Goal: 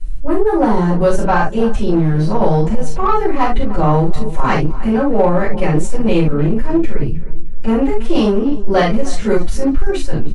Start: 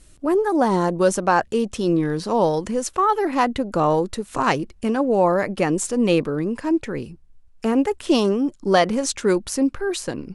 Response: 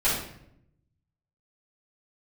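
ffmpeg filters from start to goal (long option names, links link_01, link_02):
-filter_complex "[0:a]bass=frequency=250:gain=9,treble=frequency=4000:gain=-6,asplit=2[link_01][link_02];[link_02]adelay=306,lowpass=frequency=4000:poles=1,volume=-17dB,asplit=2[link_03][link_04];[link_04]adelay=306,lowpass=frequency=4000:poles=1,volume=0.34,asplit=2[link_05][link_06];[link_06]adelay=306,lowpass=frequency=4000:poles=1,volume=0.34[link_07];[link_01][link_03][link_05][link_07]amix=inputs=4:normalize=0[link_08];[1:a]atrim=start_sample=2205,atrim=end_sample=3528,asetrate=41895,aresample=44100[link_09];[link_08][link_09]afir=irnorm=-1:irlink=0,acrossover=split=320[link_10][link_11];[link_10]asoftclip=type=hard:threshold=-6dB[link_12];[link_12][link_11]amix=inputs=2:normalize=0,lowshelf=frequency=65:gain=11.5,asplit=2[link_13][link_14];[link_14]asoftclip=type=tanh:threshold=-4dB,volume=-4.5dB[link_15];[link_13][link_15]amix=inputs=2:normalize=0,volume=-12dB"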